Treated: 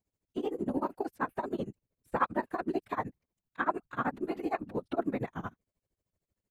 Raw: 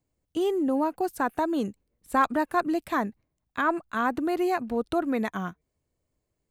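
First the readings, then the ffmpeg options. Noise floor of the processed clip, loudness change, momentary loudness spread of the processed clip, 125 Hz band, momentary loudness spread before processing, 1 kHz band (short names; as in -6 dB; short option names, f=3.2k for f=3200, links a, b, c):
under -85 dBFS, -7.5 dB, 10 LU, -0.5 dB, 10 LU, -7.0 dB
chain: -filter_complex "[0:a]tremolo=f=13:d=0.94,acrossover=split=3300[a][b];[b]acompressor=threshold=-60dB:ratio=4:attack=1:release=60[c];[a][c]amix=inputs=2:normalize=0,afftfilt=real='hypot(re,im)*cos(2*PI*random(0))':imag='hypot(re,im)*sin(2*PI*random(1))':win_size=512:overlap=0.75,volume=2.5dB"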